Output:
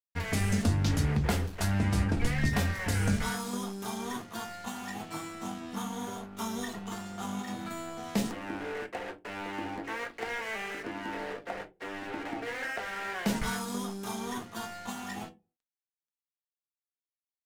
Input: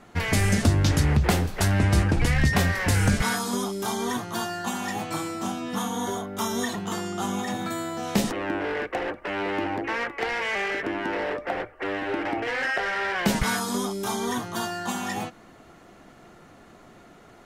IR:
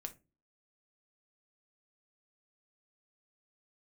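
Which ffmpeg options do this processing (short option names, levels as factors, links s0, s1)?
-filter_complex "[0:a]aeval=exprs='sgn(val(0))*max(abs(val(0))-0.0119,0)':c=same[s0];[1:a]atrim=start_sample=2205,asetrate=57330,aresample=44100[s1];[s0][s1]afir=irnorm=-1:irlink=0,volume=0.891"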